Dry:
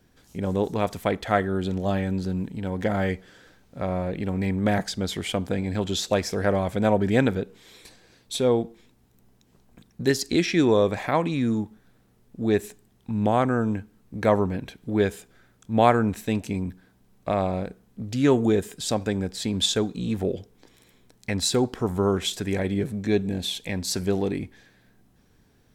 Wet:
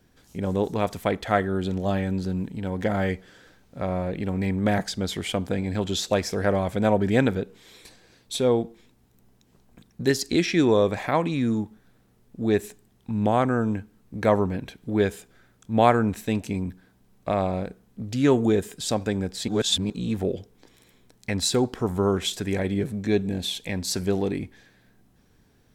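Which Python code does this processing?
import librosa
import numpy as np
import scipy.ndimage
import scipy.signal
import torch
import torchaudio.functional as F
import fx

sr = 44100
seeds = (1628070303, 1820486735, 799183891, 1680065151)

y = fx.edit(x, sr, fx.reverse_span(start_s=19.48, length_s=0.42), tone=tone)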